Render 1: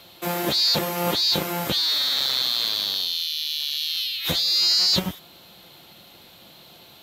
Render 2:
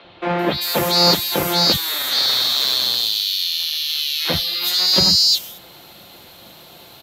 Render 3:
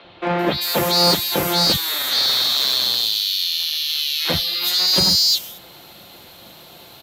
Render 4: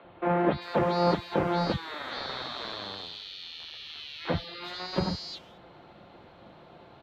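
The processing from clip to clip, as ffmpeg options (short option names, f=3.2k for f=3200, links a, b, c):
-filter_complex "[0:a]acrossover=split=180|3300[a][b][c];[a]adelay=40[d];[c]adelay=390[e];[d][b][e]amix=inputs=3:normalize=0,volume=7dB"
-af "asoftclip=type=hard:threshold=-10.5dB"
-af "lowpass=1.5k,volume=-4.5dB"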